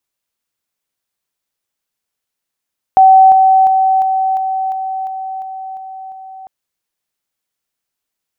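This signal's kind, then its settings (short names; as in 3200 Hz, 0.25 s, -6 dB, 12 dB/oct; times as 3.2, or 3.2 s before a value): level ladder 763 Hz -2.5 dBFS, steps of -3 dB, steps 10, 0.35 s 0.00 s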